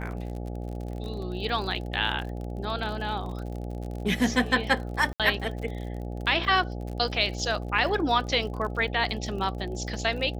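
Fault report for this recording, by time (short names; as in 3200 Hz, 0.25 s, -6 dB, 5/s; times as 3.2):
buzz 60 Hz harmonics 14 -34 dBFS
crackle 53/s -35 dBFS
5.13–5.2 gap 67 ms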